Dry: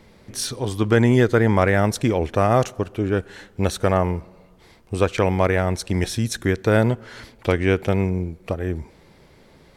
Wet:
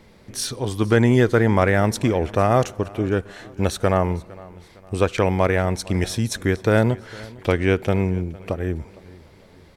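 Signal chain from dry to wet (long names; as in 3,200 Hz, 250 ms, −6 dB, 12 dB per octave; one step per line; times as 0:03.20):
repeating echo 458 ms, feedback 43%, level −21.5 dB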